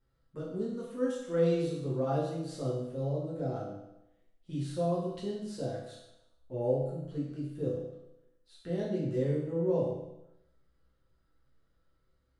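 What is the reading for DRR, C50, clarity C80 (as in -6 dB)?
-7.0 dB, 1.5 dB, 4.5 dB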